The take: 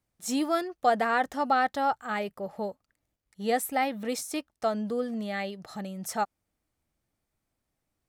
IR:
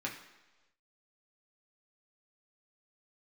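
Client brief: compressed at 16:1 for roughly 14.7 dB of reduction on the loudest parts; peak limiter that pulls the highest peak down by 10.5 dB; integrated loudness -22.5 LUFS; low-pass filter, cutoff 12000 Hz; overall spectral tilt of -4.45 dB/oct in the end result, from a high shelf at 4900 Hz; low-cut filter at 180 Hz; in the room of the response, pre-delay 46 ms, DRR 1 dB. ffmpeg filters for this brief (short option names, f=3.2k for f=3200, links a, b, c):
-filter_complex "[0:a]highpass=180,lowpass=12k,highshelf=f=4.9k:g=-3.5,acompressor=threshold=-33dB:ratio=16,alimiter=level_in=8.5dB:limit=-24dB:level=0:latency=1,volume=-8.5dB,asplit=2[a][b];[1:a]atrim=start_sample=2205,adelay=46[c];[b][c]afir=irnorm=-1:irlink=0,volume=-4dB[d];[a][d]amix=inputs=2:normalize=0,volume=17dB"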